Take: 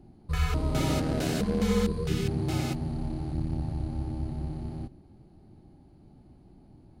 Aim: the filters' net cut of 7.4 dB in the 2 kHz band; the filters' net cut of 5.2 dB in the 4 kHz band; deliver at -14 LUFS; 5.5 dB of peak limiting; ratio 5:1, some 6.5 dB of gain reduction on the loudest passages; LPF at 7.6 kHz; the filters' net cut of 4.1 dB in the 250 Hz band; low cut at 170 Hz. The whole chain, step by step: high-pass 170 Hz; low-pass 7.6 kHz; peaking EQ 250 Hz -3.5 dB; peaking EQ 2 kHz -8.5 dB; peaking EQ 4 kHz -3.5 dB; compression 5:1, threshold -33 dBFS; trim +26.5 dB; peak limiter -3 dBFS

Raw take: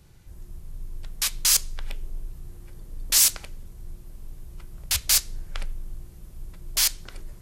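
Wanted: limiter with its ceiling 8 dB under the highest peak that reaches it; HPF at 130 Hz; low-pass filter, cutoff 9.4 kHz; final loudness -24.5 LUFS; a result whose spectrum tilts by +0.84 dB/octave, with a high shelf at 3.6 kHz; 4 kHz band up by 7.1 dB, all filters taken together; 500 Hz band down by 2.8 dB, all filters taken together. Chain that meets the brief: high-pass 130 Hz; low-pass 9.4 kHz; peaking EQ 500 Hz -4 dB; treble shelf 3.6 kHz +5 dB; peaking EQ 4 kHz +5.5 dB; trim -3.5 dB; peak limiter -12.5 dBFS

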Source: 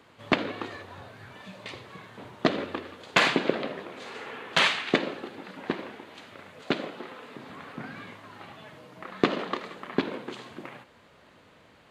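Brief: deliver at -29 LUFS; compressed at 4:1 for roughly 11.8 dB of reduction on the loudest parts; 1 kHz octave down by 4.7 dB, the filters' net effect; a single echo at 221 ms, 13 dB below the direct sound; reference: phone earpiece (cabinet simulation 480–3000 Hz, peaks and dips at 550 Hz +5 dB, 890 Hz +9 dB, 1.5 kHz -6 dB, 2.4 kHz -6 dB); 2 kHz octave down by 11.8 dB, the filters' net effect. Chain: peaking EQ 1 kHz -8.5 dB; peaking EQ 2 kHz -7 dB; compression 4:1, threshold -36 dBFS; cabinet simulation 480–3000 Hz, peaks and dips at 550 Hz +5 dB, 890 Hz +9 dB, 1.5 kHz -6 dB, 2.4 kHz -6 dB; delay 221 ms -13 dB; trim +17 dB

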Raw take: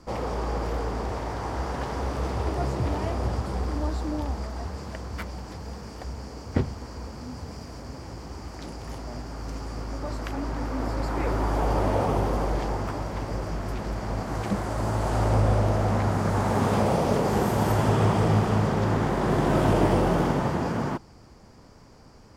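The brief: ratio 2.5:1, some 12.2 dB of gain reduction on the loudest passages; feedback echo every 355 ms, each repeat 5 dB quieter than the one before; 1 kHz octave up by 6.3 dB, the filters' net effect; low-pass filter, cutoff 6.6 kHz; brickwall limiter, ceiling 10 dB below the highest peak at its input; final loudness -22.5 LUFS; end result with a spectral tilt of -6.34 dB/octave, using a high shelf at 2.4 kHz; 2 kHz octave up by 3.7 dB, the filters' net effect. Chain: low-pass 6.6 kHz; peaking EQ 1 kHz +8 dB; peaking EQ 2 kHz +4 dB; treble shelf 2.4 kHz -5.5 dB; compression 2.5:1, threshold -35 dBFS; peak limiter -29.5 dBFS; feedback delay 355 ms, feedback 56%, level -5 dB; trim +15 dB

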